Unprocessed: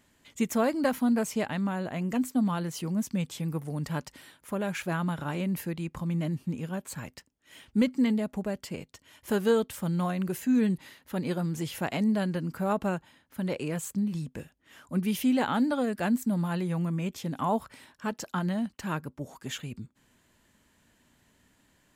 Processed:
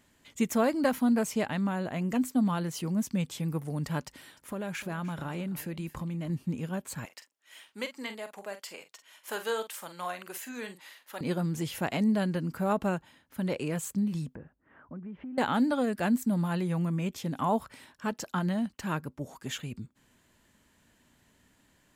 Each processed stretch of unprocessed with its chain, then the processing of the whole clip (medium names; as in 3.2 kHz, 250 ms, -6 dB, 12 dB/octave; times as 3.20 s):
4.04–6.30 s: compression 4:1, threshold -32 dBFS + delay 300 ms -17.5 dB
7.05–11.21 s: high-pass 710 Hz + doubling 45 ms -10 dB
14.35–15.38 s: low-pass 1.6 kHz 24 dB/octave + compression, threshold -39 dBFS
whole clip: none